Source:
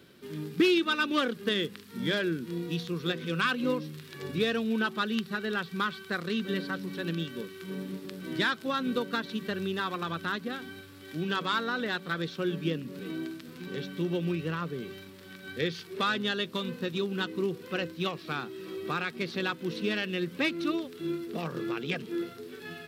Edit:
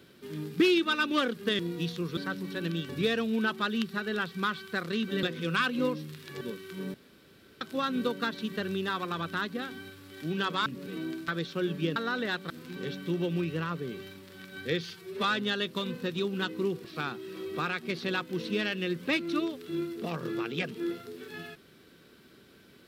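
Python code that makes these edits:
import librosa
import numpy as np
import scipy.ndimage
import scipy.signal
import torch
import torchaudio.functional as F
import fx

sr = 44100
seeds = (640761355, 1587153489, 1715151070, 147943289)

y = fx.edit(x, sr, fx.cut(start_s=1.59, length_s=0.91),
    fx.swap(start_s=3.08, length_s=1.18, other_s=6.6, other_length_s=0.72),
    fx.room_tone_fill(start_s=7.85, length_s=0.67),
    fx.swap(start_s=11.57, length_s=0.54, other_s=12.79, other_length_s=0.62),
    fx.stretch_span(start_s=15.77, length_s=0.25, factor=1.5),
    fx.cut(start_s=17.63, length_s=0.53), tone=tone)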